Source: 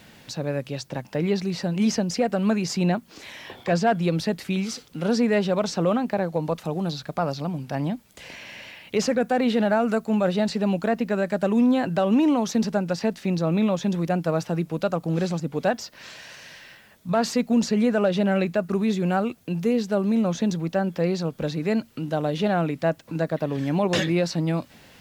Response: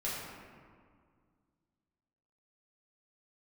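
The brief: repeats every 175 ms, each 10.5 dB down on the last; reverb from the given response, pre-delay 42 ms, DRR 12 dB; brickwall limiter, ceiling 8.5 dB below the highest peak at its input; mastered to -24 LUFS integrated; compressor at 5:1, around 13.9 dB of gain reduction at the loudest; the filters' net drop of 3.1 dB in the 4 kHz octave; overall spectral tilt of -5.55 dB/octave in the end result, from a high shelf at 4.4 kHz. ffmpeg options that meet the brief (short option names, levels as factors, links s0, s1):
-filter_complex "[0:a]equalizer=f=4000:t=o:g=-8.5,highshelf=f=4400:g=7,acompressor=threshold=0.0224:ratio=5,alimiter=level_in=1.68:limit=0.0631:level=0:latency=1,volume=0.596,aecho=1:1:175|350|525:0.299|0.0896|0.0269,asplit=2[s0][s1];[1:a]atrim=start_sample=2205,adelay=42[s2];[s1][s2]afir=irnorm=-1:irlink=0,volume=0.15[s3];[s0][s3]amix=inputs=2:normalize=0,volume=4.47"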